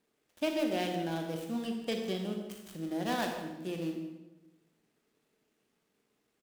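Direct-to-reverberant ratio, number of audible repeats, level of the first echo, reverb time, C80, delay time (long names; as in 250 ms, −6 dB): 3.0 dB, 1, −16.0 dB, 1.1 s, 6.5 dB, 163 ms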